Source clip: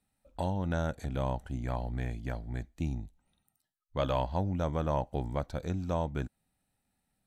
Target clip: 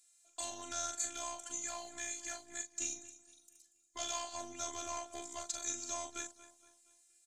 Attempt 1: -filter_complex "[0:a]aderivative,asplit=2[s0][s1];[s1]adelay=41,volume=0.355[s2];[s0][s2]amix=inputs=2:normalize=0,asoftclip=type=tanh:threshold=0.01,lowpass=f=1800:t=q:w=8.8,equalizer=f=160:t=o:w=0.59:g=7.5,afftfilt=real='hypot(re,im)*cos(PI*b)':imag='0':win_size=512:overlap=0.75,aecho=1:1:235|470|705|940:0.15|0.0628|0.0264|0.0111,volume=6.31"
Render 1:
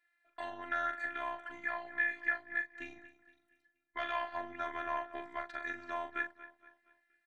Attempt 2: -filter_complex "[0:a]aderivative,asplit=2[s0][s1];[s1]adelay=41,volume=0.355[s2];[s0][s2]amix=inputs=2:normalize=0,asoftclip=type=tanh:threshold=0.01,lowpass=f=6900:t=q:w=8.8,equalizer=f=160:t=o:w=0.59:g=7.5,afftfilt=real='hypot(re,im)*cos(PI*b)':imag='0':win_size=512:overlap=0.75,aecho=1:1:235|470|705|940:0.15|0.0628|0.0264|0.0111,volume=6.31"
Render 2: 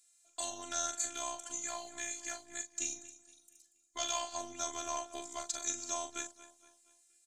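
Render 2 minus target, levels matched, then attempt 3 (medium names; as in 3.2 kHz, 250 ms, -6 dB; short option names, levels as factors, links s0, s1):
saturation: distortion -8 dB
-filter_complex "[0:a]aderivative,asplit=2[s0][s1];[s1]adelay=41,volume=0.355[s2];[s0][s2]amix=inputs=2:normalize=0,asoftclip=type=tanh:threshold=0.00335,lowpass=f=6900:t=q:w=8.8,equalizer=f=160:t=o:w=0.59:g=7.5,afftfilt=real='hypot(re,im)*cos(PI*b)':imag='0':win_size=512:overlap=0.75,aecho=1:1:235|470|705|940:0.15|0.0628|0.0264|0.0111,volume=6.31"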